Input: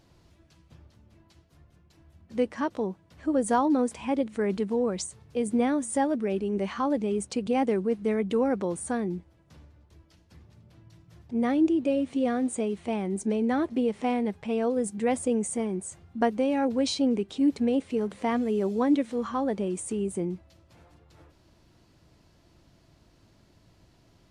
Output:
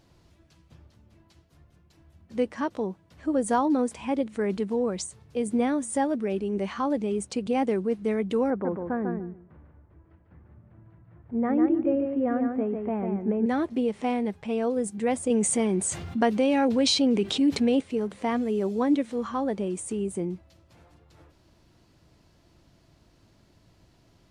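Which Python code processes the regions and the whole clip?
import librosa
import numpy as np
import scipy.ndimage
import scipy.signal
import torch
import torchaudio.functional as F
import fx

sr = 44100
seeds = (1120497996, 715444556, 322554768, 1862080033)

y = fx.chain(x, sr, fx.lowpass(hz=1800.0, slope=24),
    fx.echo_feedback(ms=147, feedback_pct=16, wet_db=-5), at=(8.5, 13.46))
y = fx.chain(y, sr, fx.highpass(hz=75.0, slope=12),
    fx.peak_eq(hz=3300.0, db=4.5, octaves=1.8),
    fx.env_flatten(amount_pct=50), at=(15.3, 17.81))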